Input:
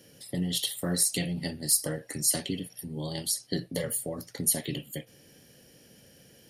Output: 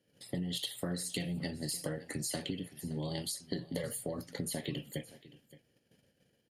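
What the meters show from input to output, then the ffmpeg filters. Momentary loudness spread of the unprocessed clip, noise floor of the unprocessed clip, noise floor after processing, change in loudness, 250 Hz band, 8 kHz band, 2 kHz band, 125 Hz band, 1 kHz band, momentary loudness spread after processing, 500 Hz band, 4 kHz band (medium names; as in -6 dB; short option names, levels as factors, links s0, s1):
12 LU, -57 dBFS, -75 dBFS, -9.0 dB, -4.5 dB, -13.5 dB, -5.0 dB, -4.5 dB, -4.0 dB, 5 LU, -4.5 dB, -7.0 dB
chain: -filter_complex "[0:a]agate=range=0.112:threshold=0.00224:ratio=16:detection=peak,highshelf=f=7700:g=-11.5,bandreject=f=5600:w=8.1,acrossover=split=5100[s0][s1];[s1]alimiter=level_in=1.41:limit=0.0631:level=0:latency=1,volume=0.708[s2];[s0][s2]amix=inputs=2:normalize=0,acompressor=threshold=0.0224:ratio=6,asplit=2[s3][s4];[s4]aecho=0:1:570:0.119[s5];[s3][s5]amix=inputs=2:normalize=0"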